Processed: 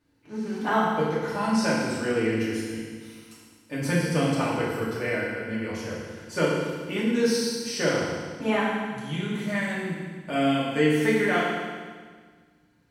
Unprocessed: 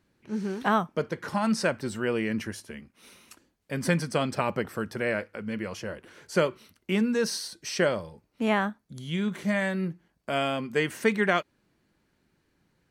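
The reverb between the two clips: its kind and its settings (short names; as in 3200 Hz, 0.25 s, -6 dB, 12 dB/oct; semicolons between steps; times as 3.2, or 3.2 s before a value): FDN reverb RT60 1.6 s, low-frequency decay 1.25×, high-frequency decay 1×, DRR -8 dB; gain -6.5 dB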